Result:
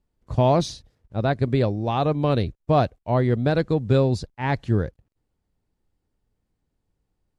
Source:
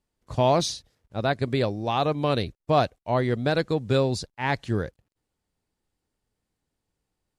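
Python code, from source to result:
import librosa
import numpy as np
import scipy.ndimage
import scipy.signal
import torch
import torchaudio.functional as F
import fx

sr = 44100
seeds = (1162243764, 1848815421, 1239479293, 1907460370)

y = fx.tilt_eq(x, sr, slope=-2.0)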